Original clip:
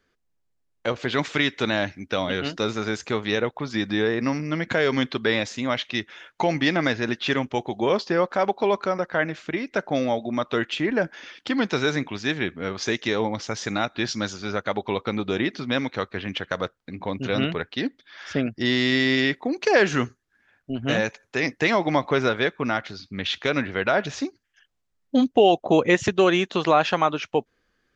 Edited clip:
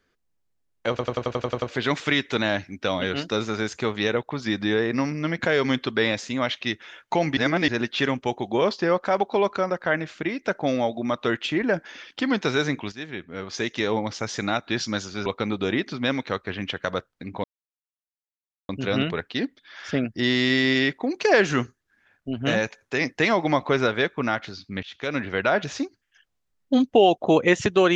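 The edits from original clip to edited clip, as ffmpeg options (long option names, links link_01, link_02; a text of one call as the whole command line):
ffmpeg -i in.wav -filter_complex "[0:a]asplit=15[link_01][link_02][link_03][link_04][link_05][link_06][link_07][link_08][link_09][link_10][link_11][link_12][link_13][link_14][link_15];[link_01]atrim=end=0.992[link_16];[link_02]atrim=start=0.898:end=0.992[link_17];[link_03]atrim=start=0.898:end=0.992[link_18];[link_04]atrim=start=0.898:end=0.992[link_19];[link_05]atrim=start=0.898:end=0.992[link_20];[link_06]atrim=start=0.898:end=0.992[link_21];[link_07]atrim=start=0.898:end=0.992[link_22];[link_08]atrim=start=0.898:end=0.992[link_23];[link_09]atrim=start=0.898:end=6.652[link_24];[link_10]atrim=start=6.648:end=6.962,asetpts=PTS-STARTPTS,areverse[link_25];[link_11]atrim=start=6.958:end=12.2,asetpts=PTS-STARTPTS,afade=type=out:start_time=5.238:duration=0.004:curve=hsin:silence=0.223872[link_26];[link_12]atrim=start=12.2:end=14.542,asetpts=PTS-STARTPTS,afade=type=in:duration=1.03:silence=0.223872[link_27];[link_13]atrim=start=14.928:end=17.11,asetpts=PTS-STARTPTS,afade=type=out:start_time=2.178:duration=0.004:curve=hsin,apad=pad_dur=1.25[link_28];[link_14]atrim=start=17.11:end=23.25,asetpts=PTS-STARTPTS,afade=type=in:duration=0.004:curve=hsin,afade=type=out:start_time=6.136:duration=0.004:curve=hsin:silence=0.0794328[link_29];[link_15]atrim=start=23.25,asetpts=PTS-STARTPTS,afade=type=in:duration=0.46:silence=0.0794328[link_30];[link_16][link_17]acrossfade=duration=0.004:curve1=hsin:curve2=hsin[link_31];[link_31][link_18]acrossfade=duration=0.004:curve1=hsin:curve2=hsin[link_32];[link_32][link_19]acrossfade=duration=0.004:curve1=hsin:curve2=hsin[link_33];[link_33][link_20]acrossfade=duration=0.004:curve1=hsin:curve2=hsin[link_34];[link_34][link_21]acrossfade=duration=0.004:curve1=hsin:curve2=hsin[link_35];[link_35][link_22]acrossfade=duration=0.004:curve1=hsin:curve2=hsin[link_36];[link_36][link_23]acrossfade=duration=0.004:curve1=hsin:curve2=hsin[link_37];[link_37][link_24]acrossfade=duration=0.004:curve1=hsin:curve2=hsin[link_38];[link_38][link_25]acrossfade=duration=0.004:curve1=hsin:curve2=hsin[link_39];[link_26][link_27]concat=n=2:v=0:a=1[link_40];[link_39][link_40]acrossfade=duration=0.004:curve1=hsin:curve2=hsin[link_41];[link_28][link_29][link_30]concat=n=3:v=0:a=1[link_42];[link_41][link_42]acrossfade=duration=0.004:curve1=hsin:curve2=hsin" out.wav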